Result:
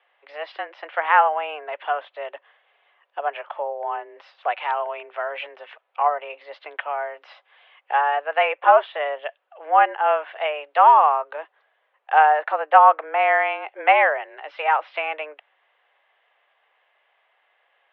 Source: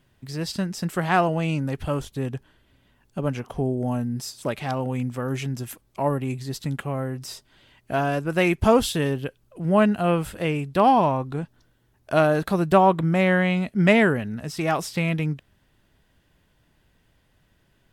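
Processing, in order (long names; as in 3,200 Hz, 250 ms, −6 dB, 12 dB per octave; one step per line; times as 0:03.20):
treble cut that deepens with the level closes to 2,100 Hz, closed at −19.5 dBFS
single-sideband voice off tune +150 Hz 460–2,900 Hz
level +5.5 dB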